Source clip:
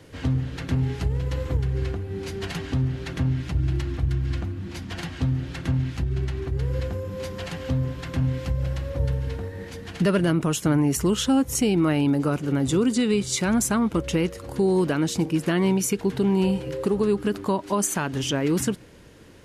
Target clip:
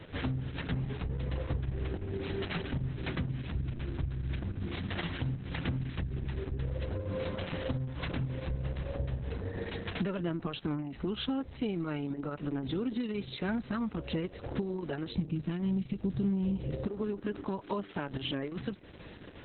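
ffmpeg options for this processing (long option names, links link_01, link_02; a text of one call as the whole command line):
ffmpeg -i in.wav -filter_complex "[0:a]asplit=3[link_01][link_02][link_03];[link_01]afade=type=out:start_time=15.1:duration=0.02[link_04];[link_02]bass=frequency=250:gain=15,treble=frequency=4000:gain=11,afade=type=in:start_time=15.1:duration=0.02,afade=type=out:start_time=16.86:duration=0.02[link_05];[link_03]afade=type=in:start_time=16.86:duration=0.02[link_06];[link_04][link_05][link_06]amix=inputs=3:normalize=0,acompressor=threshold=-34dB:ratio=4,volume=2dB" -ar 48000 -c:a libopus -b:a 6k out.opus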